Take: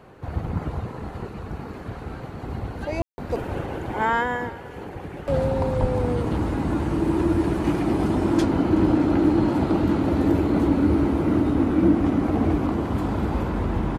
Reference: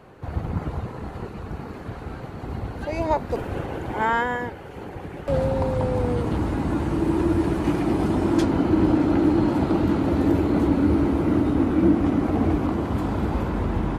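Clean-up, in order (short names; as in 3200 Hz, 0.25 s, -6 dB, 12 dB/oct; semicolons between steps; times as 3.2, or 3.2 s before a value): 5.8–5.92 HPF 140 Hz 24 dB/oct; room tone fill 3.02–3.18; inverse comb 0.374 s -20.5 dB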